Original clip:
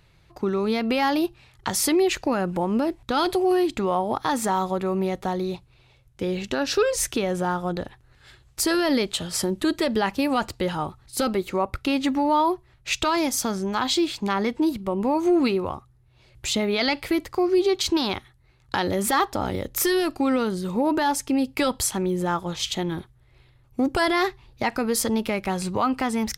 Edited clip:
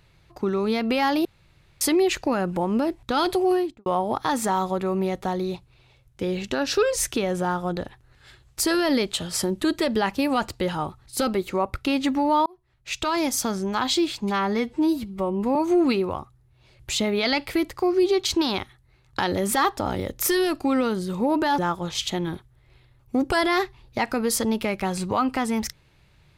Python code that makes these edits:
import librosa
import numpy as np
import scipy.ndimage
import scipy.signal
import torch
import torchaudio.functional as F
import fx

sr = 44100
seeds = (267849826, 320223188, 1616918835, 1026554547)

y = fx.studio_fade_out(x, sr, start_s=3.48, length_s=0.38)
y = fx.edit(y, sr, fx.room_tone_fill(start_s=1.25, length_s=0.56),
    fx.fade_in_span(start_s=12.46, length_s=0.81),
    fx.stretch_span(start_s=14.22, length_s=0.89, factor=1.5),
    fx.cut(start_s=21.14, length_s=1.09), tone=tone)